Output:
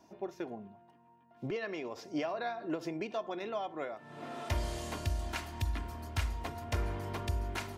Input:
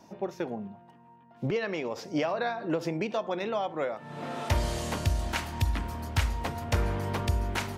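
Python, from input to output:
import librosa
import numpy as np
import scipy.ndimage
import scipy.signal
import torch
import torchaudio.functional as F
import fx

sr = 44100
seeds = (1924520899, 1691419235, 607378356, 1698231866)

y = x + 0.38 * np.pad(x, (int(2.9 * sr / 1000.0), 0))[:len(x)]
y = F.gain(torch.from_numpy(y), -7.5).numpy()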